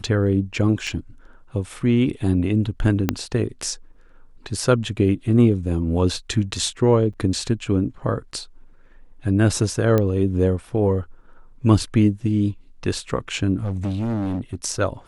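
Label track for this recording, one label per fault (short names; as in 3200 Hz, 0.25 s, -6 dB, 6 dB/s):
0.870000	0.870000	gap 3.9 ms
3.090000	3.090000	pop -5 dBFS
7.130000	7.140000	gap 6.1 ms
9.980000	9.980000	pop -8 dBFS
13.560000	14.550000	clipped -21 dBFS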